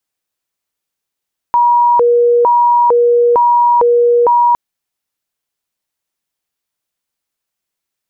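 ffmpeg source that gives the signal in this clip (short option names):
-f lavfi -i "aevalsrc='0.473*sin(2*PI*(718*t+240/1.1*(0.5-abs(mod(1.1*t,1)-0.5))))':d=3.01:s=44100"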